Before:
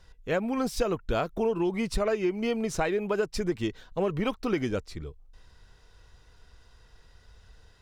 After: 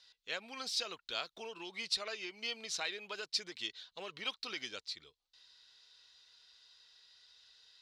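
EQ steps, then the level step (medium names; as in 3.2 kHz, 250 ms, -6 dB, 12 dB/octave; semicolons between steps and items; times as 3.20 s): band-pass filter 4.1 kHz, Q 3.1; +8.5 dB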